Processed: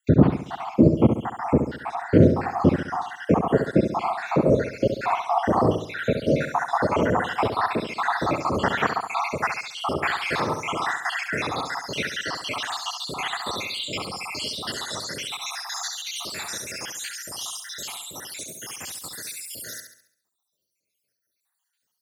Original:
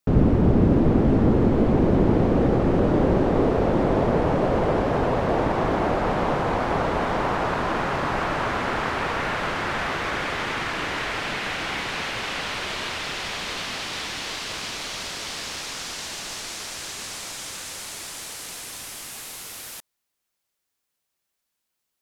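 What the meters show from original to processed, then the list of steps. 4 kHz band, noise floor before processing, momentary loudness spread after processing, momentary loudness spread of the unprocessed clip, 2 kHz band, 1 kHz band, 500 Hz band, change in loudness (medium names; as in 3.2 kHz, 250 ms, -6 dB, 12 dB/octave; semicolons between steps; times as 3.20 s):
0.0 dB, -80 dBFS, 13 LU, 14 LU, -0.5 dB, +0.5 dB, -1.0 dB, -1.0 dB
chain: random holes in the spectrogram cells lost 79%; high-pass 78 Hz 24 dB/octave; flutter echo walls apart 11.7 m, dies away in 0.58 s; trim +6.5 dB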